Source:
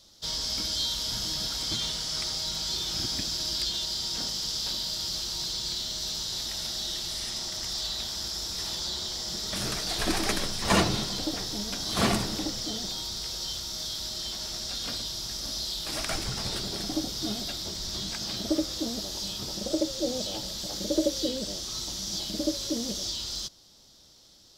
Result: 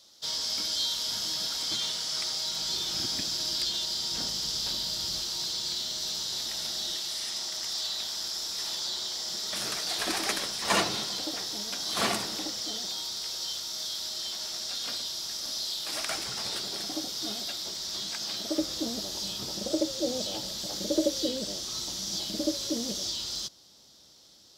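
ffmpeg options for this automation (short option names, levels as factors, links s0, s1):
-af "asetnsamples=n=441:p=0,asendcmd='2.58 highpass f 200;4.11 highpass f 59;5.23 highpass f 240;6.97 highpass f 570;18.58 highpass f 140',highpass=f=430:p=1"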